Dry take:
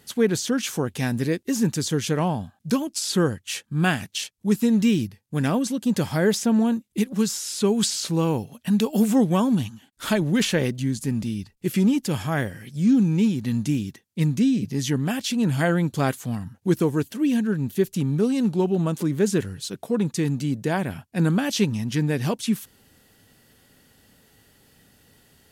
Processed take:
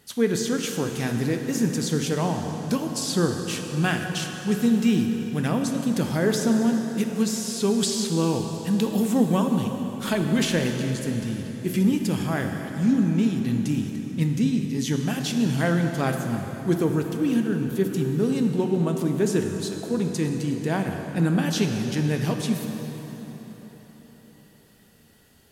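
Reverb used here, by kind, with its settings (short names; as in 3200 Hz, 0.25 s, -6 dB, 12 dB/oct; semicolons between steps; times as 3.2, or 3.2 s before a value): plate-style reverb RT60 4.5 s, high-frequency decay 0.7×, DRR 3.5 dB; gain -2.5 dB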